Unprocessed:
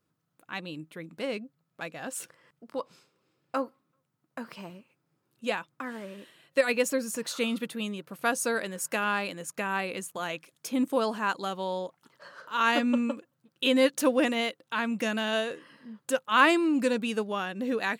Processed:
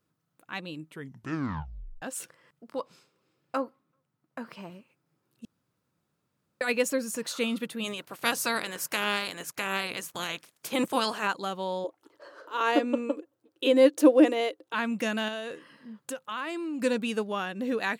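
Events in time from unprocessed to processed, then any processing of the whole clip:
0.87 tape stop 1.15 s
3.57–4.72 high shelf 4000 Hz -5.5 dB
5.45–6.61 room tone
7.83–11.26 spectral limiter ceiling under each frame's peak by 18 dB
11.84–14.74 EQ curve 100 Hz 0 dB, 190 Hz -25 dB, 300 Hz +10 dB, 1400 Hz -4 dB
15.28–16.82 compressor 5:1, threshold -32 dBFS

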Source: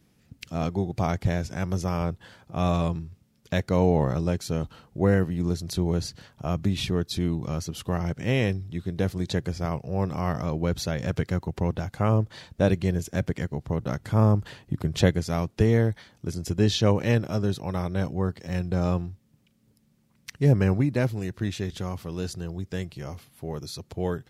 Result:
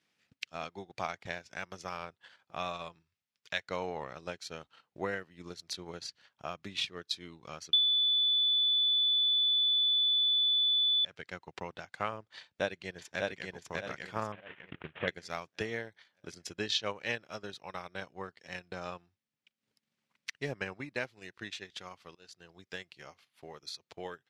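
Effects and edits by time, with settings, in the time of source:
3.02–3.67 bell 290 Hz -8 dB 2.3 oct
7.73–11.05 bleep 3480 Hz -20 dBFS
12.38–13.48 echo throw 0.6 s, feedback 45%, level -0.5 dB
14.32–15.08 CVSD 16 kbps
22.15–22.68 fade in, from -15.5 dB
whole clip: LPF 2600 Hz 12 dB/oct; differentiator; transient shaper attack +6 dB, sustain -10 dB; gain +8 dB

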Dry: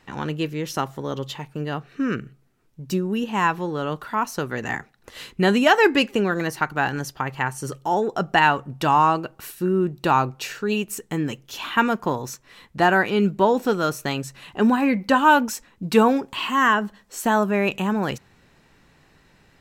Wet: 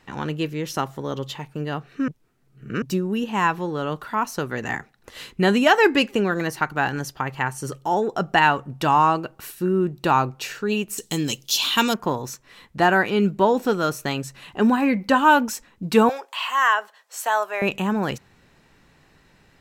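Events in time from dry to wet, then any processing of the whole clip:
2.08–2.82 reverse
10.98–11.94 resonant high shelf 2700 Hz +14 dB, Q 1.5
16.09–17.62 HPF 570 Hz 24 dB/oct

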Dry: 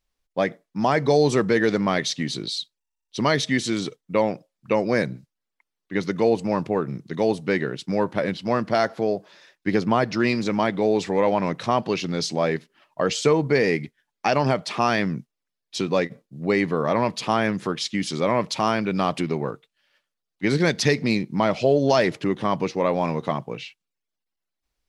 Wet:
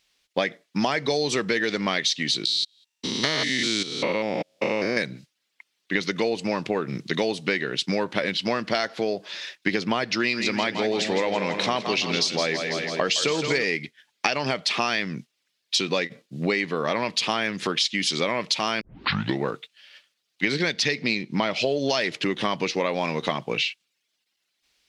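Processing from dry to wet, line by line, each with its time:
2.45–4.97 stepped spectrum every 0.2 s
10.17–13.64 split-band echo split 430 Hz, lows 0.222 s, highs 0.165 s, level -8.5 dB
18.81 tape start 0.62 s
20.46–21.56 high shelf 7100 Hz -9.5 dB
whole clip: weighting filter D; compressor 6:1, threshold -29 dBFS; gain +7.5 dB

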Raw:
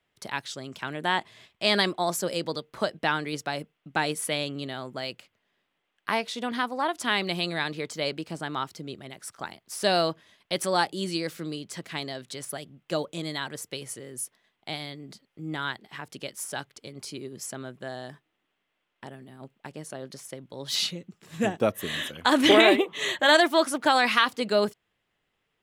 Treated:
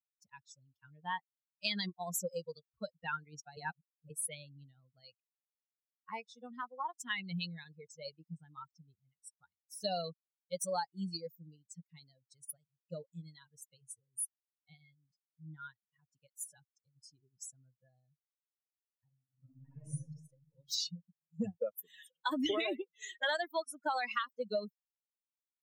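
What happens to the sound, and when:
3.57–4.1 reverse
19.25–19.9 reverb throw, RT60 2.9 s, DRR -10 dB
21.57–22.32 HPF 270 Hz
whole clip: per-bin expansion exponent 3; compressor 6:1, threshold -34 dBFS; gain +2 dB

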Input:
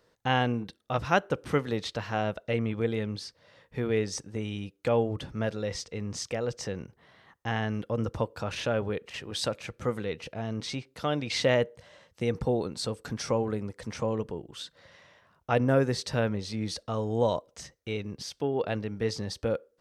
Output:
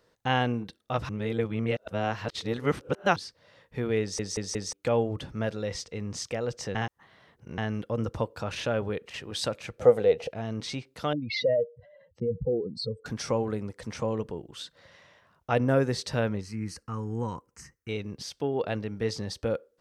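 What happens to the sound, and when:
1.09–3.16 reverse
4.01 stutter in place 0.18 s, 4 plays
6.75–7.58 reverse
9.78–10.31 band shelf 590 Hz +13.5 dB 1.1 oct
11.13–13.06 spectral contrast raised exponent 2.8
16.41–17.89 fixed phaser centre 1500 Hz, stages 4

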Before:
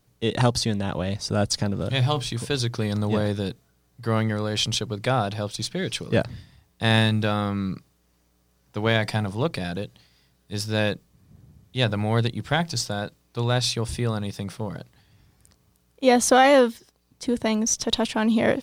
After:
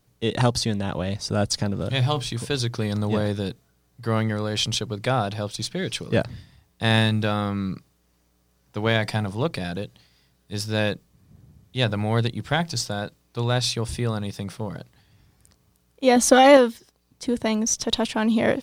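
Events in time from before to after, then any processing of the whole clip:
16.16–16.57 comb 3.5 ms, depth 71%

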